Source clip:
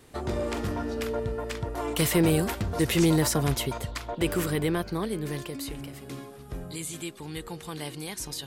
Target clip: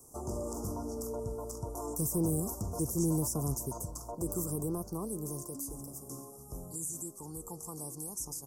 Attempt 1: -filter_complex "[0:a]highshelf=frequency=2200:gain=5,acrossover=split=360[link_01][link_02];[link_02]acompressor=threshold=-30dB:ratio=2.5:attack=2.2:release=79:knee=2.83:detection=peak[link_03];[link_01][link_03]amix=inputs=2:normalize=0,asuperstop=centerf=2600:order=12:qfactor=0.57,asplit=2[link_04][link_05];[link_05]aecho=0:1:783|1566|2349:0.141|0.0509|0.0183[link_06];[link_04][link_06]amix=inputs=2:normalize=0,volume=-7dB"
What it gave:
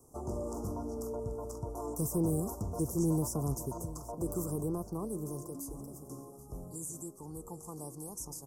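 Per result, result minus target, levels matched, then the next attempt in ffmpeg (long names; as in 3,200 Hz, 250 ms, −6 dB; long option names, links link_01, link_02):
echo-to-direct +8.5 dB; 4,000 Hz band −3.5 dB
-filter_complex "[0:a]highshelf=frequency=2200:gain=5,acrossover=split=360[link_01][link_02];[link_02]acompressor=threshold=-30dB:ratio=2.5:attack=2.2:release=79:knee=2.83:detection=peak[link_03];[link_01][link_03]amix=inputs=2:normalize=0,asuperstop=centerf=2600:order=12:qfactor=0.57,asplit=2[link_04][link_05];[link_05]aecho=0:1:783|1566:0.0531|0.0191[link_06];[link_04][link_06]amix=inputs=2:normalize=0,volume=-7dB"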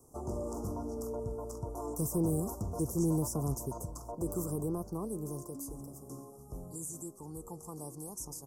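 4,000 Hz band −3.5 dB
-filter_complex "[0:a]highshelf=frequency=2200:gain=14.5,acrossover=split=360[link_01][link_02];[link_02]acompressor=threshold=-30dB:ratio=2.5:attack=2.2:release=79:knee=2.83:detection=peak[link_03];[link_01][link_03]amix=inputs=2:normalize=0,asuperstop=centerf=2600:order=12:qfactor=0.57,asplit=2[link_04][link_05];[link_05]aecho=0:1:783|1566:0.0531|0.0191[link_06];[link_04][link_06]amix=inputs=2:normalize=0,volume=-7dB"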